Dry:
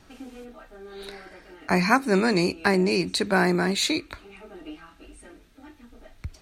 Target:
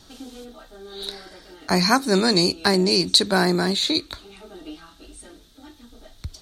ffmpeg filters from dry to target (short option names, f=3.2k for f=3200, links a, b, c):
-filter_complex "[0:a]highshelf=f=3k:t=q:w=3:g=6,asettb=1/sr,asplit=3[a][b][c];[a]atrim=end=3.444[d];[b]atrim=start=3.44:end=3.95,asetpts=PTS-STARTPTS,afade=t=in:d=0.004:c=qsin,afade=t=out:st=0.506:d=0.004:c=qsin,acrossover=split=2600[e][f];[f]acompressor=threshold=-27dB:ratio=4:attack=1:release=60[g];[e][g]amix=inputs=2:normalize=0[h];[c]atrim=start=3.946[i];[d][h]acrossfade=d=0.004:c1=hsin:c2=qsin[j];[j][i]acrossfade=d=0.004:c1=qsin:c2=hsin,volume=2dB"